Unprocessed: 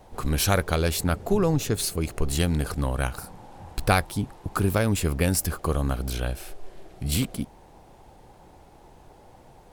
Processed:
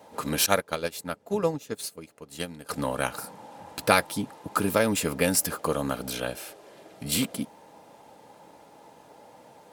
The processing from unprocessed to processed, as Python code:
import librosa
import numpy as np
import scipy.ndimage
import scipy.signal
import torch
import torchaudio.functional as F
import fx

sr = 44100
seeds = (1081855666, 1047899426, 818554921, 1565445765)

y = scipy.signal.sosfilt(scipy.signal.butter(2, 250.0, 'highpass', fs=sr, output='sos'), x)
y = fx.notch_comb(y, sr, f0_hz=370.0)
y = fx.upward_expand(y, sr, threshold_db=-35.0, expansion=2.5, at=(0.46, 2.69))
y = F.gain(torch.from_numpy(y), 3.5).numpy()